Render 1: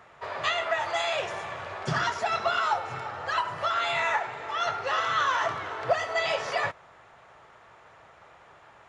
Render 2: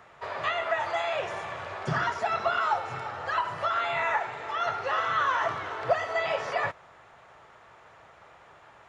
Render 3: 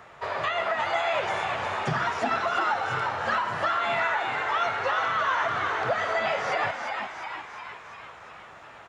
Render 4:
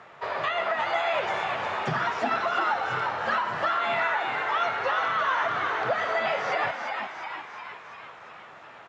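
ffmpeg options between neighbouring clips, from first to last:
ffmpeg -i in.wav -filter_complex "[0:a]acrossover=split=2600[link_01][link_02];[link_02]acompressor=threshold=-46dB:ratio=4:attack=1:release=60[link_03];[link_01][link_03]amix=inputs=2:normalize=0" out.wav
ffmpeg -i in.wav -filter_complex "[0:a]alimiter=limit=-22.5dB:level=0:latency=1:release=157,asplit=9[link_01][link_02][link_03][link_04][link_05][link_06][link_07][link_08][link_09];[link_02]adelay=353,afreqshift=100,volume=-5.5dB[link_10];[link_03]adelay=706,afreqshift=200,volume=-10.1dB[link_11];[link_04]adelay=1059,afreqshift=300,volume=-14.7dB[link_12];[link_05]adelay=1412,afreqshift=400,volume=-19.2dB[link_13];[link_06]adelay=1765,afreqshift=500,volume=-23.8dB[link_14];[link_07]adelay=2118,afreqshift=600,volume=-28.4dB[link_15];[link_08]adelay=2471,afreqshift=700,volume=-33dB[link_16];[link_09]adelay=2824,afreqshift=800,volume=-37.6dB[link_17];[link_01][link_10][link_11][link_12][link_13][link_14][link_15][link_16][link_17]amix=inputs=9:normalize=0,volume=4.5dB" out.wav
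ffmpeg -i in.wav -af "highpass=130,lowpass=5700" out.wav

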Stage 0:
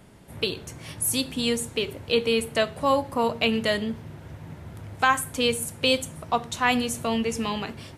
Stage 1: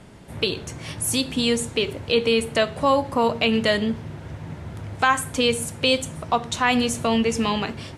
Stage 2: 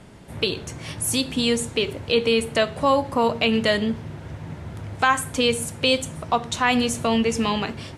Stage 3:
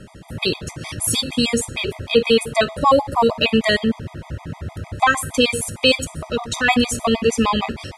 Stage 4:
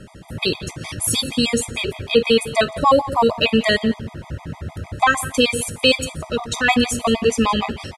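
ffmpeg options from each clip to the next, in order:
ffmpeg -i in.wav -filter_complex "[0:a]lowpass=8800,asplit=2[link_01][link_02];[link_02]alimiter=limit=-17.5dB:level=0:latency=1:release=133,volume=2dB[link_03];[link_01][link_03]amix=inputs=2:normalize=0,volume=-1.5dB" out.wav
ffmpeg -i in.wav -af anull out.wav
ffmpeg -i in.wav -af "asubboost=boost=3:cutoff=61,afftfilt=real='re*gt(sin(2*PI*6.5*pts/sr)*(1-2*mod(floor(b*sr/1024/640),2)),0)':imag='im*gt(sin(2*PI*6.5*pts/sr)*(1-2*mod(floor(b*sr/1024/640),2)),0)':win_size=1024:overlap=0.75,volume=7dB" out.wav
ffmpeg -i in.wav -af "aecho=1:1:172:0.126" out.wav

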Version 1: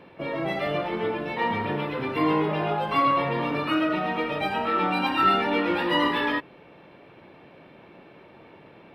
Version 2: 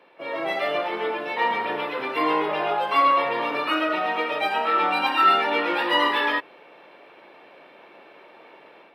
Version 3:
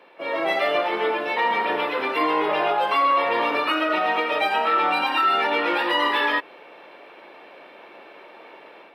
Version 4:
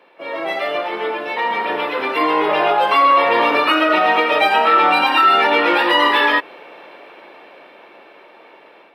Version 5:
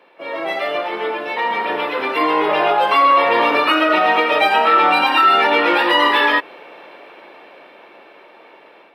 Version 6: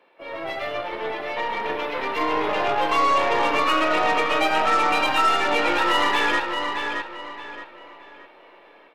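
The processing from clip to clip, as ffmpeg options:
ffmpeg -i in.wav -af "highpass=480,dynaudnorm=framelen=180:gausssize=3:maxgain=7dB,volume=-3dB" out.wav
ffmpeg -i in.wav -af "equalizer=frequency=93:width_type=o:width=1:gain=-15,alimiter=limit=-16dB:level=0:latency=1:release=151,volume=4dB" out.wav
ffmpeg -i in.wav -af "dynaudnorm=framelen=260:gausssize=17:maxgain=8dB" out.wav
ffmpeg -i in.wav -af anull out.wav
ffmpeg -i in.wav -filter_complex "[0:a]aeval=exprs='0.596*(cos(1*acos(clip(val(0)/0.596,-1,1)))-cos(1*PI/2))+0.0473*(cos(6*acos(clip(val(0)/0.596,-1,1)))-cos(6*PI/2))':channel_layout=same,asplit=2[link_01][link_02];[link_02]adelay=622,lowpass=frequency=5000:poles=1,volume=-5dB,asplit=2[link_03][link_04];[link_04]adelay=622,lowpass=frequency=5000:poles=1,volume=0.34,asplit=2[link_05][link_06];[link_06]adelay=622,lowpass=frequency=5000:poles=1,volume=0.34,asplit=2[link_07][link_08];[link_08]adelay=622,lowpass=frequency=5000:poles=1,volume=0.34[link_09];[link_03][link_05][link_07][link_09]amix=inputs=4:normalize=0[link_10];[link_01][link_10]amix=inputs=2:normalize=0,volume=-7.5dB" out.wav

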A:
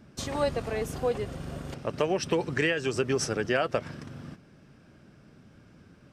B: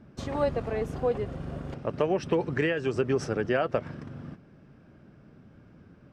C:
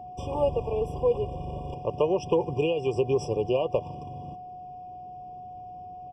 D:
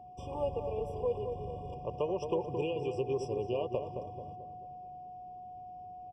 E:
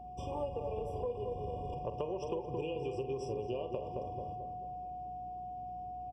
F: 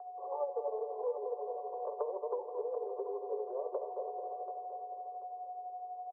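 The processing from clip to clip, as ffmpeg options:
ffmpeg -i in.wav -af "lowpass=frequency=1400:poles=1,volume=1.5dB" out.wav
ffmpeg -i in.wav -af "aecho=1:1:2.1:0.52,aeval=exprs='val(0)+0.0112*sin(2*PI*730*n/s)':channel_layout=same,afftfilt=real='re*eq(mod(floor(b*sr/1024/1200),2),0)':imag='im*eq(mod(floor(b*sr/1024/1200),2),0)':win_size=1024:overlap=0.75" out.wav
ffmpeg -i in.wav -filter_complex "[0:a]asplit=2[link_01][link_02];[link_02]adelay=219,lowpass=frequency=1200:poles=1,volume=-6dB,asplit=2[link_03][link_04];[link_04]adelay=219,lowpass=frequency=1200:poles=1,volume=0.51,asplit=2[link_05][link_06];[link_06]adelay=219,lowpass=frequency=1200:poles=1,volume=0.51,asplit=2[link_07][link_08];[link_08]adelay=219,lowpass=frequency=1200:poles=1,volume=0.51,asplit=2[link_09][link_10];[link_10]adelay=219,lowpass=frequency=1200:poles=1,volume=0.51,asplit=2[link_11][link_12];[link_12]adelay=219,lowpass=frequency=1200:poles=1,volume=0.51[link_13];[link_01][link_03][link_05][link_07][link_09][link_11][link_13]amix=inputs=7:normalize=0,volume=-9dB" out.wav
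ffmpeg -i in.wav -filter_complex "[0:a]asplit=2[link_01][link_02];[link_02]adelay=45,volume=-10dB[link_03];[link_01][link_03]amix=inputs=2:normalize=0,acompressor=threshold=-36dB:ratio=6,aeval=exprs='val(0)+0.00141*(sin(2*PI*60*n/s)+sin(2*PI*2*60*n/s)/2+sin(2*PI*3*60*n/s)/3+sin(2*PI*4*60*n/s)/4+sin(2*PI*5*60*n/s)/5)':channel_layout=same,volume=2dB" out.wav
ffmpeg -i in.wav -af "tremolo=f=12:d=0.47,asuperpass=centerf=820:order=20:qfactor=0.66,aecho=1:1:735|1470|2205:0.282|0.0817|0.0237,volume=4dB" out.wav

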